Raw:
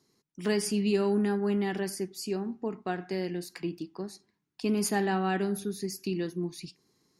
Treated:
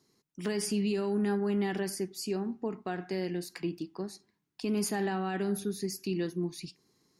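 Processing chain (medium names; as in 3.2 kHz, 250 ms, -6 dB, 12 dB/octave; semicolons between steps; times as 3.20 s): peak limiter -23 dBFS, peak gain reduction 7.5 dB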